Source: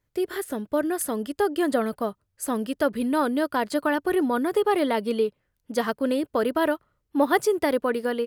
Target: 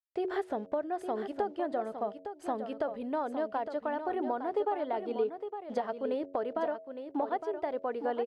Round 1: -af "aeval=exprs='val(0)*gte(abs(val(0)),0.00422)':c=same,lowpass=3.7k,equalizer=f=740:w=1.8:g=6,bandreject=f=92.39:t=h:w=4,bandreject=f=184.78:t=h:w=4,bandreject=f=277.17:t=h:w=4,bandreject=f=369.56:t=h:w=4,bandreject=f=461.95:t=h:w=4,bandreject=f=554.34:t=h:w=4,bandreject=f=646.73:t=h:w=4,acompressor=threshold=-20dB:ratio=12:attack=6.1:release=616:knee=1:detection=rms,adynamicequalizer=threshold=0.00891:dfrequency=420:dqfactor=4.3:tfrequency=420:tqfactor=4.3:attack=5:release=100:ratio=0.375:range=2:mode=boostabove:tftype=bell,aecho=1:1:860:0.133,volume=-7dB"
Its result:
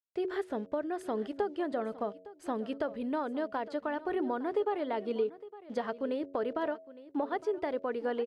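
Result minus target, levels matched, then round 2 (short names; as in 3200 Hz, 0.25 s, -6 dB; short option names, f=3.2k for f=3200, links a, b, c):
echo-to-direct -8.5 dB; 1000 Hz band -3.0 dB
-af "aeval=exprs='val(0)*gte(abs(val(0)),0.00422)':c=same,lowpass=3.7k,equalizer=f=740:w=1.8:g=15,bandreject=f=92.39:t=h:w=4,bandreject=f=184.78:t=h:w=4,bandreject=f=277.17:t=h:w=4,bandreject=f=369.56:t=h:w=4,bandreject=f=461.95:t=h:w=4,bandreject=f=554.34:t=h:w=4,bandreject=f=646.73:t=h:w=4,acompressor=threshold=-20dB:ratio=12:attack=6.1:release=616:knee=1:detection=rms,adynamicequalizer=threshold=0.00891:dfrequency=420:dqfactor=4.3:tfrequency=420:tqfactor=4.3:attack=5:release=100:ratio=0.375:range=2:mode=boostabove:tftype=bell,aecho=1:1:860:0.355,volume=-7dB"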